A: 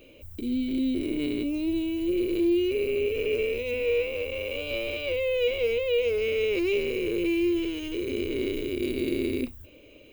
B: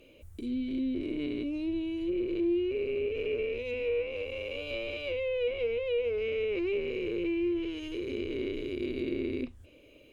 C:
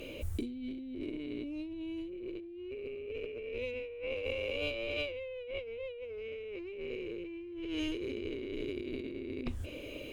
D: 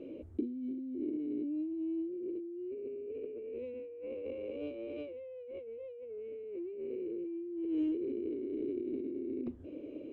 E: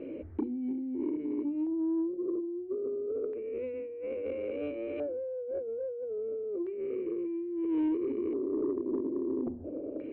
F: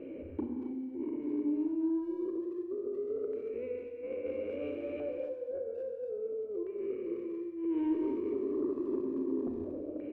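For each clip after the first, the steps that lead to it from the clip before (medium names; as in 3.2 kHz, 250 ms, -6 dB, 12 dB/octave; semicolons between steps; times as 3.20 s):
low-pass that closes with the level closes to 2.3 kHz, closed at -22 dBFS; trim -5 dB
compressor with a negative ratio -43 dBFS, ratio -1; trim +3 dB
band-pass filter 310 Hz, Q 2.3; trim +4.5 dB
LFO low-pass square 0.3 Hz 740–1900 Hz; hum notches 60/120/180/240/300/360 Hz; saturation -28 dBFS, distortion -22 dB; trim +5.5 dB
speakerphone echo 230 ms, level -12 dB; reverberation, pre-delay 30 ms, DRR 3 dB; trim -3.5 dB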